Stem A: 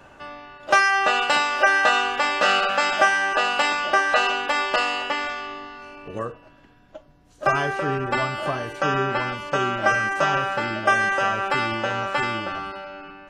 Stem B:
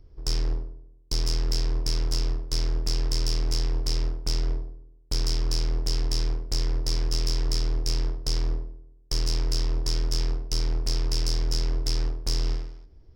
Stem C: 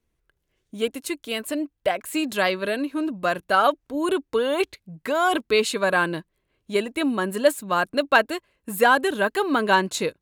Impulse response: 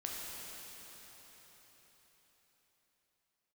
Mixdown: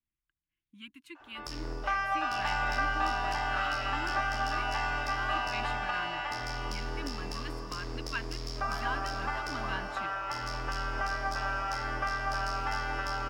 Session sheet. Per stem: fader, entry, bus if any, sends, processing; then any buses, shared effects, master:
-4.0 dB, 1.15 s, bus A, send -6 dB, echo send -13.5 dB, HPF 720 Hz 24 dB/oct; high shelf 6700 Hz -12 dB
+3.0 dB, 1.20 s, bus A, send -11 dB, no echo send, HPF 140 Hz 6 dB/oct
-18.5 dB, 0.00 s, no bus, no send, no echo send, Chebyshev band-stop 340–980 Hz, order 4; bell 2700 Hz +12.5 dB 1.3 oct
bus A: 0.0 dB, steep high-pass 250 Hz 48 dB/oct; compressor, threshold -34 dBFS, peak gain reduction 16 dB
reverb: on, RT60 4.8 s, pre-delay 8 ms
echo: echo 0.242 s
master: high shelf 2300 Hz -12 dB

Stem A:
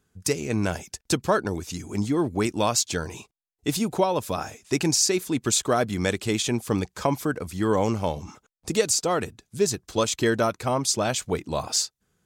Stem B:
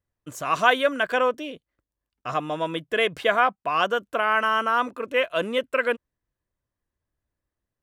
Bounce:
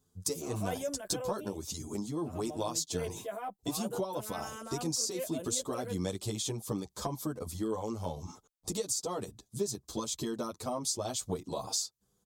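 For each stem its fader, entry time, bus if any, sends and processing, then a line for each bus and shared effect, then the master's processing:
-1.0 dB, 0.00 s, no send, band shelf 2000 Hz -11 dB 1.2 oct; compressor 6:1, threshold -28 dBFS, peak gain reduction 12 dB
-9.5 dB, 0.00 s, no send, tilt +2 dB/oct; transient shaper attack -5 dB, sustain +4 dB; band shelf 2600 Hz -15.5 dB 2.9 oct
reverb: off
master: high shelf 6400 Hz +5 dB; endless flanger 9 ms +0.37 Hz

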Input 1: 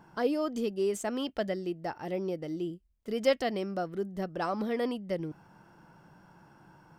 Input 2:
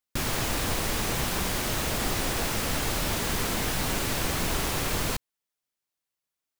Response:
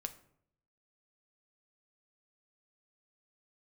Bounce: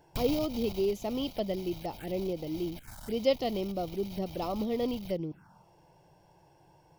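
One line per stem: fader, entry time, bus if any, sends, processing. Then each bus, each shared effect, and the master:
+1.0 dB, 0.00 s, no send, dry
-2.0 dB, 0.00 s, no send, comb 1.3 ms, depth 70%; pump 129 bpm, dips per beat 1, -19 dB, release 0.152 s; one-sided clip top -36.5 dBFS; auto duck -14 dB, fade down 1.00 s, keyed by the first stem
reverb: off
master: envelope phaser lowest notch 190 Hz, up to 1600 Hz, full sweep at -31.5 dBFS

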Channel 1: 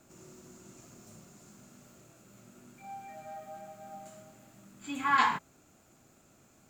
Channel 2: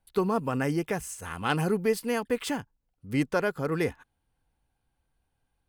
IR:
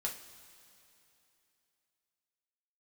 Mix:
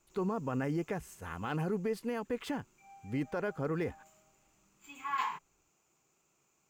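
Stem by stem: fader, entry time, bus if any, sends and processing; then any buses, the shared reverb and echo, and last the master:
-9.5 dB, 0.00 s, no send, ripple EQ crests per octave 0.74, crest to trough 8 dB; low shelf 380 Hz -11 dB
-3.5 dB, 0.00 s, no send, high shelf 3000 Hz -9.5 dB; limiter -22 dBFS, peak gain reduction 7.5 dB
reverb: off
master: decimation joined by straight lines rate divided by 2×

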